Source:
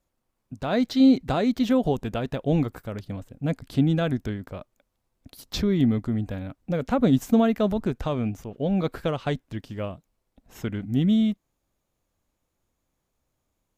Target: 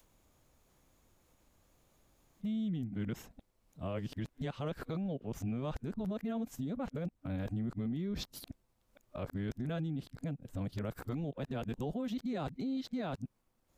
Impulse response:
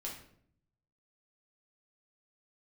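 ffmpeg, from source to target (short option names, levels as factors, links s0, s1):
-af "areverse,adynamicequalizer=threshold=0.0282:dfrequency=170:dqfactor=1:tfrequency=170:tqfactor=1:attack=5:release=100:ratio=0.375:range=2:mode=boostabove:tftype=bell,acompressor=threshold=0.0224:ratio=4,alimiter=level_in=2.11:limit=0.0631:level=0:latency=1:release=14,volume=0.473,acompressor=mode=upward:threshold=0.00112:ratio=2.5"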